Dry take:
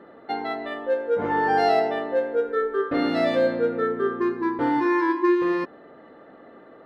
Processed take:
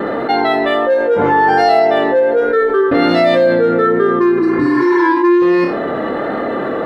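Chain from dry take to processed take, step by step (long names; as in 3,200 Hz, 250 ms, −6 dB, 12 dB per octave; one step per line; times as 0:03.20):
healed spectral selection 0:04.39–0:04.99, 360–3,700 Hz both
pitch vibrato 1.3 Hz 21 cents
on a send: flutter between parallel walls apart 4.9 metres, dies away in 0.21 s
on the sum: envelope flattener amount 70%
level +4.5 dB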